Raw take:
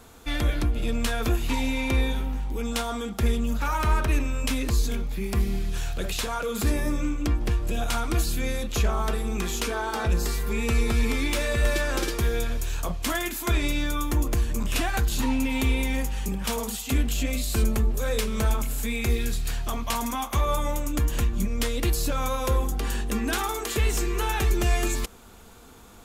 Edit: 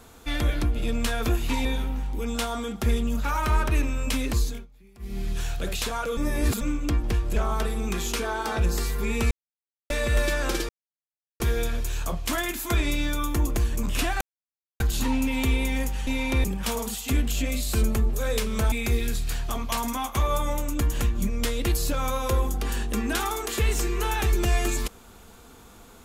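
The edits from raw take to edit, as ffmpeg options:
-filter_complex "[0:a]asplit=14[s0][s1][s2][s3][s4][s5][s6][s7][s8][s9][s10][s11][s12][s13];[s0]atrim=end=1.652[s14];[s1]atrim=start=2.018:end=5.04,asetpts=PTS-STARTPTS,afade=t=out:st=2.722:d=0.3:silence=0.0630957[s15];[s2]atrim=start=5.04:end=5.36,asetpts=PTS-STARTPTS,volume=0.0631[s16];[s3]atrim=start=5.36:end=6.542,asetpts=PTS-STARTPTS,afade=t=in:d=0.3:silence=0.0630957[s17];[s4]atrim=start=6.538:end=6.982,asetpts=PTS-STARTPTS,areverse[s18];[s5]atrim=start=6.978:end=7.732[s19];[s6]atrim=start=8.838:end=10.79,asetpts=PTS-STARTPTS,afade=t=out:st=1.948:d=0.004:c=hsin[s20];[s7]atrim=start=10.79:end=11.38,asetpts=PTS-STARTPTS,volume=0[s21];[s8]atrim=start=11.38:end=12.17,asetpts=PTS-STARTPTS,afade=t=in:d=0.004:c=hsin,afade=t=out:st=0.786:d=0.004:c=hsin,apad=pad_dur=0.71[s22];[s9]atrim=start=12.17:end=14.98,asetpts=PTS-STARTPTS,afade=t=in:d=0.004:c=hsin,afade=t=out:st=2.806:d=0.004:c=hsin,apad=pad_dur=0.59[s23];[s10]atrim=start=14.98:end=16.252,asetpts=PTS-STARTPTS,afade=t=in:d=0.004:c=hsin[s24];[s11]atrim=start=1.648:end=2.022[s25];[s12]atrim=start=16.248:end=18.532[s26];[s13]atrim=start=18.898[s27];[s15][s16][s17]concat=n=3:v=0:a=1[s28];[s14][s28]acrossfade=d=0.004:c1=hsin:c2=hsin[s29];[s29][s18]acrossfade=d=0.004:c1=hsin:c2=hsin[s30];[s30][s19]acrossfade=d=0.004:c1=hsin:c2=hsin[s31];[s20][s21][s22][s23][s24]concat=n=5:v=0:a=1[s32];[s31][s32]acrossfade=d=0.004:c1=hsin:c2=hsin[s33];[s33][s25]acrossfade=d=0.004:c1=hsin:c2=hsin[s34];[s34][s26]acrossfade=d=0.004:c1=hsin:c2=hsin[s35];[s35][s27]acrossfade=d=0.004:c1=hsin:c2=hsin"

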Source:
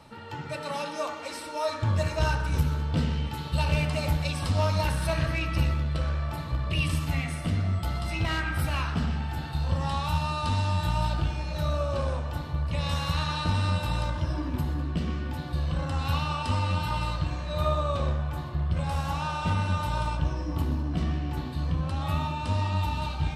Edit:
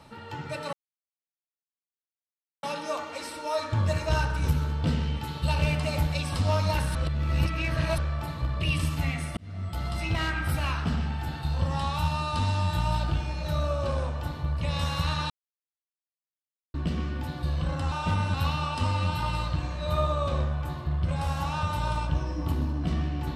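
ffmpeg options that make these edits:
-filter_complex "[0:a]asplit=10[s0][s1][s2][s3][s4][s5][s6][s7][s8][s9];[s0]atrim=end=0.73,asetpts=PTS-STARTPTS,afade=t=out:st=0.726:d=0.004:c=hsin,apad=pad_dur=1.9[s10];[s1]atrim=start=0.73:end=5.052,asetpts=PTS-STARTPTS,afade=t=in:d=0.004:c=hsin[s11];[s2]atrim=start=5.048:end=6.082,asetpts=PTS-STARTPTS,areverse[s12];[s3]atrim=start=6.078:end=7.47,asetpts=PTS-STARTPTS,afade=t=out:st=1.388:d=0.004:c=hsin[s13];[s4]atrim=start=7.47:end=13.4,asetpts=PTS-STARTPTS,afade=t=in:d=0.54,afade=t=out:st=5.926:d=0.004:c=hsin[s14];[s5]atrim=start=13.4:end=14.84,asetpts=PTS-STARTPTS,volume=0[s15];[s6]atrim=start=14.84:end=16.022,asetpts=PTS-STARTPTS,afade=t=in:d=0.004:c=hsin[s16];[s7]atrim=start=19.308:end=19.732[s17];[s8]atrim=start=16.018:end=19.312[s18];[s9]atrim=start=19.728[s19];[s10][s11]concat=n=2:v=0:a=1[s20];[s20][s12]acrossfade=d=0.004:c1=hsin:c2=hsin[s21];[s13][s14][s15][s16]concat=n=4:v=0:a=1[s22];[s21][s22]acrossfade=d=0.004:c1=hsin:c2=hsin[s23];[s23][s17]acrossfade=d=0.004:c1=hsin:c2=hsin[s24];[s24][s18]acrossfade=d=0.004:c1=hsin:c2=hsin[s25];[s25][s19]acrossfade=d=0.004:c1=hsin:c2=hsin"

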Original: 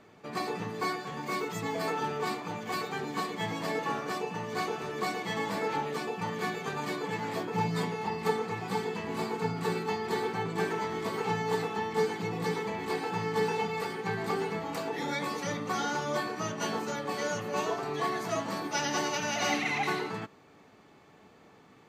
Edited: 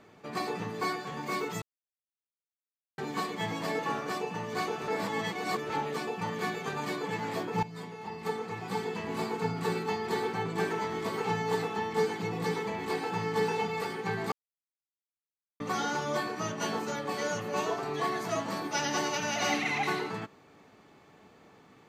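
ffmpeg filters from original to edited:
-filter_complex "[0:a]asplit=8[s0][s1][s2][s3][s4][s5][s6][s7];[s0]atrim=end=1.62,asetpts=PTS-STARTPTS,afade=t=out:st=1.616:d=0.004:c=hsin[s8];[s1]atrim=start=1.62:end=2.98,asetpts=PTS-STARTPTS,volume=0[s9];[s2]atrim=start=2.98:end=4.882,asetpts=PTS-STARTPTS,afade=t=in:d=0.004:c=hsin[s10];[s3]atrim=start=4.878:end=5.702,asetpts=PTS-STARTPTS,areverse[s11];[s4]atrim=start=5.698:end=7.63,asetpts=PTS-STARTPTS,afade=t=out:st=1.928:d=0.004:c=hsin:silence=0.188365[s12];[s5]atrim=start=7.63:end=14.32,asetpts=PTS-STARTPTS,afade=t=in:d=1.4:silence=0.188365,afade=t=out:st=6.686:d=0.004:c=hsin[s13];[s6]atrim=start=14.32:end=15.6,asetpts=PTS-STARTPTS,volume=0[s14];[s7]atrim=start=15.6,asetpts=PTS-STARTPTS,afade=t=in:d=0.004:c=hsin[s15];[s8][s9][s10]concat=n=3:v=0:a=1[s16];[s16][s11]acrossfade=d=0.004:c1=hsin:c2=hsin[s17];[s12][s13][s14][s15]concat=n=4:v=0:a=1[s18];[s17][s18]acrossfade=d=0.004:c1=hsin:c2=hsin"

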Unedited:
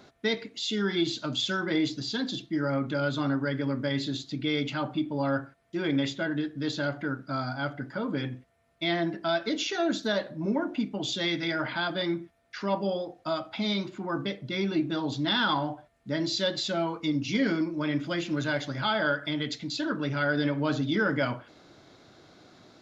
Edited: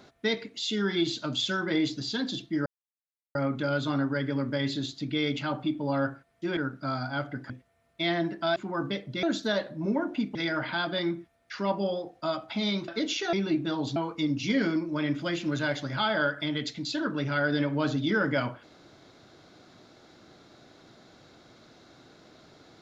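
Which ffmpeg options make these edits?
-filter_complex "[0:a]asplit=10[s0][s1][s2][s3][s4][s5][s6][s7][s8][s9];[s0]atrim=end=2.66,asetpts=PTS-STARTPTS,afade=t=out:st=2.656:d=0.004:c=hsin,apad=pad_dur=0.69[s10];[s1]atrim=start=2.66:end=5.882,asetpts=PTS-STARTPTS,afade=t=in:d=0.004:c=hsin[s11];[s2]atrim=start=7.028:end=7.962[s12];[s3]atrim=start=8.318:end=9.382[s13];[s4]atrim=start=13.908:end=14.582[s14];[s5]atrim=start=9.828:end=10.952[s15];[s6]atrim=start=11.378:end=13.912[s16];[s7]atrim=start=9.378:end=9.832[s17];[s8]atrim=start=14.578:end=15.212[s18];[s9]atrim=start=16.808[s19];[s10][s11]concat=n=2:v=0:a=1[s20];[s20][s12]acrossfade=d=0.004:c1=hsin:c2=hsin[s21];[s21][s13]acrossfade=d=0.004:c1=hsin:c2=hsin[s22];[s22][s14]acrossfade=d=0.004:c1=hsin:c2=hsin[s23];[s23][s15]acrossfade=d=0.004:c1=hsin:c2=hsin[s24];[s24][s16]acrossfade=d=0.004:c1=hsin:c2=hsin[s25];[s25][s17]acrossfade=d=0.004:c1=hsin:c2=hsin[s26];[s26][s18]acrossfade=d=0.004:c1=hsin:c2=hsin[s27];[s27][s19]acrossfade=d=0.004:c1=hsin:c2=hsin"

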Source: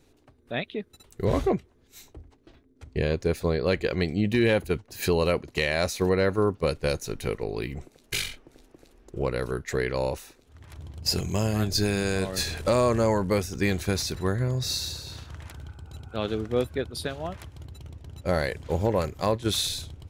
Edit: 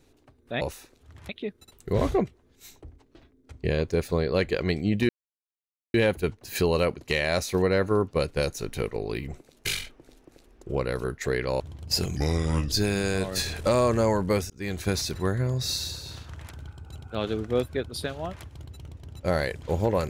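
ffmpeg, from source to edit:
-filter_complex "[0:a]asplit=8[s0][s1][s2][s3][s4][s5][s6][s7];[s0]atrim=end=0.612[s8];[s1]atrim=start=10.068:end=10.752[s9];[s2]atrim=start=0.608:end=4.41,asetpts=PTS-STARTPTS,afade=t=out:st=3.798:d=0.004:c=hsin,apad=pad_dur=0.85[s10];[s3]atrim=start=4.41:end=10.072,asetpts=PTS-STARTPTS,afade=t=in:d=0.004:c=hsin[s11];[s4]atrim=start=10.748:end=11.314[s12];[s5]atrim=start=11.31:end=11.73,asetpts=PTS-STARTPTS,asetrate=33075,aresample=44100[s13];[s6]atrim=start=11.726:end=13.51,asetpts=PTS-STARTPTS,afade=t=out:st=1.78:d=0.004:c=hsin[s14];[s7]atrim=start=13.51,asetpts=PTS-STARTPTS,afade=t=in:d=0.38[s15];[s8][s9]acrossfade=d=0.004:c1=hsin:c2=hsin[s16];[s10][s11]concat=n=2:v=0:a=1[s17];[s16][s17]acrossfade=d=0.004:c1=hsin:c2=hsin[s18];[s18][s12]acrossfade=d=0.004:c1=hsin:c2=hsin[s19];[s19][s13]acrossfade=d=0.004:c1=hsin:c2=hsin[s20];[s14][s15]concat=n=2:v=0:a=1[s21];[s20][s21]acrossfade=d=0.004:c1=hsin:c2=hsin"

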